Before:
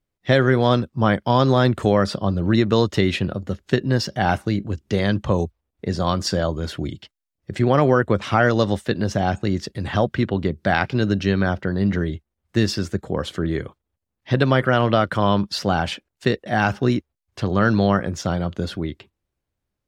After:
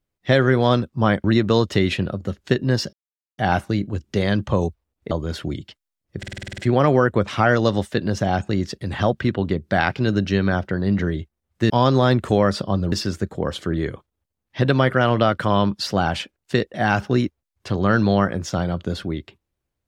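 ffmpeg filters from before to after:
-filter_complex "[0:a]asplit=14[a][b][c][d][e][f][g][h][i][j][k][l][m][n];[a]atrim=end=1.242[o];[b]atrim=start=2.458:end=4.15,asetpts=PTS-STARTPTS,afade=t=out:st=1.688:d=0.004:c=hsin,apad=pad_dur=0.45[p];[c]atrim=start=4.15:end=5.882,asetpts=PTS-STARTPTS,afade=t=in:d=0.004:c=hsin[q];[d]atrim=start=6.448:end=7.572[r];[e]atrim=start=7.518:end=7.572[s];[f]atrim=start=7.518:end=7.572[t];[g]atrim=start=7.518:end=7.572[u];[h]atrim=start=7.518:end=7.572[v];[i]atrim=start=7.518:end=7.572[w];[j]atrim=start=7.518:end=7.572[x];[k]atrim=start=7.518:end=7.572[y];[l]atrim=start=7.518:end=12.642[z];[m]atrim=start=1.238:end=2.462[aa];[n]atrim=start=12.638[ab];[p][q]concat=n=2:v=0:a=1[ac];[o][ac]acrossfade=d=0.004:c1=hsin:c2=hsin[ad];[ad][r]acrossfade=d=0.004:c1=hsin:c2=hsin[ae];[ae][s]acrossfade=d=0.004:c1=hsin:c2=hsin[af];[af][t]acrossfade=d=0.004:c1=hsin:c2=hsin[ag];[ag][u]acrossfade=d=0.004:c1=hsin:c2=hsin[ah];[ah][v]acrossfade=d=0.004:c1=hsin:c2=hsin[ai];[ai][w]acrossfade=d=0.004:c1=hsin:c2=hsin[aj];[aj][x]acrossfade=d=0.004:c1=hsin:c2=hsin[ak];[ak][y]acrossfade=d=0.004:c1=hsin:c2=hsin[al];[al][z]acrossfade=d=0.004:c1=hsin:c2=hsin[am];[am][aa]acrossfade=d=0.004:c1=hsin:c2=hsin[an];[an][ab]acrossfade=d=0.004:c1=hsin:c2=hsin"

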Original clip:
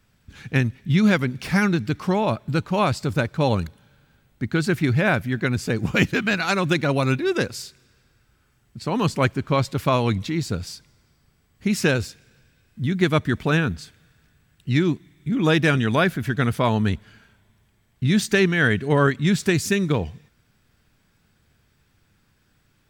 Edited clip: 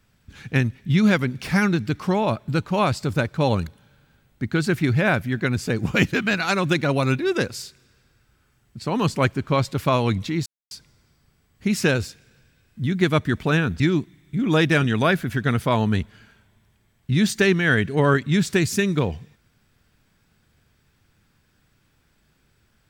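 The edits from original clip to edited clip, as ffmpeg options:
-filter_complex "[0:a]asplit=4[a][b][c][d];[a]atrim=end=10.46,asetpts=PTS-STARTPTS,afade=t=out:st=10.456:d=0.004:c=hsin[e];[b]atrim=start=10.46:end=10.71,asetpts=PTS-STARTPTS,volume=0[f];[c]atrim=start=10.71:end=13.802,asetpts=PTS-STARTPTS,afade=t=in:d=0.004:c=hsin[g];[d]atrim=start=14.728[h];[e][f][g]concat=n=3:v=0:a=1[i];[i][h]acrossfade=d=0.004:c1=hsin:c2=hsin"

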